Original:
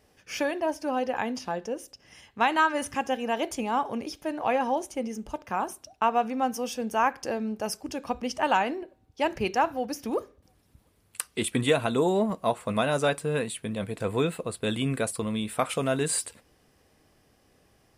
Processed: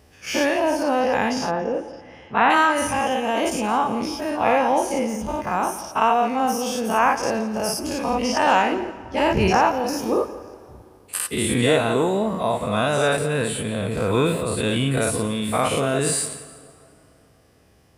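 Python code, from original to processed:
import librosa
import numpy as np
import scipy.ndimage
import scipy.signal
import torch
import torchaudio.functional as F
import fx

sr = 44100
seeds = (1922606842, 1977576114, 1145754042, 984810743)

y = fx.spec_dilate(x, sr, span_ms=120)
y = scipy.signal.sosfilt(scipy.signal.butter(2, 61.0, 'highpass', fs=sr, output='sos'), y)
y = fx.low_shelf(y, sr, hz=96.0, db=11.0)
y = fx.echo_feedback(y, sr, ms=171, feedback_pct=31, wet_db=-15.5)
y = fx.rev_plate(y, sr, seeds[0], rt60_s=3.1, hf_ratio=0.65, predelay_ms=0, drr_db=16.5)
y = fx.rider(y, sr, range_db=4, speed_s=2.0)
y = fx.lowpass(y, sr, hz=2400.0, slope=12, at=(1.5, 2.49), fade=0.02)
y = fx.low_shelf(y, sr, hz=330.0, db=7.0, at=(8.72, 9.58))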